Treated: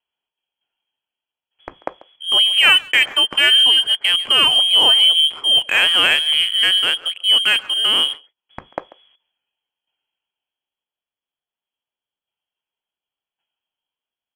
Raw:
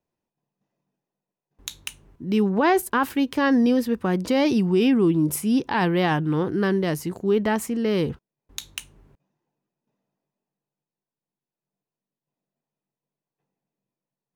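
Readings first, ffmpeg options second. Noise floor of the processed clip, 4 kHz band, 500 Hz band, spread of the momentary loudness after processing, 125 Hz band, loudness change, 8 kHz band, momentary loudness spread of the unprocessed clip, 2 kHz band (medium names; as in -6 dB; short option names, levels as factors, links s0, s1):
under -85 dBFS, +26.5 dB, -9.0 dB, 6 LU, under -15 dB, +9.5 dB, +5.5 dB, 18 LU, +12.5 dB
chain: -filter_complex "[0:a]highshelf=f=2400:g=10,lowpass=f=2900:t=q:w=0.5098,lowpass=f=2900:t=q:w=0.6013,lowpass=f=2900:t=q:w=0.9,lowpass=f=2900:t=q:w=2.563,afreqshift=-3400,asplit=2[s0][s1];[s1]adelay=140,highpass=300,lowpass=3400,asoftclip=type=hard:threshold=0.15,volume=0.126[s2];[s0][s2]amix=inputs=2:normalize=0,asplit=2[s3][s4];[s4]adynamicsmooth=sensitivity=6.5:basefreq=1500,volume=1.19[s5];[s3][s5]amix=inputs=2:normalize=0,volume=0.891"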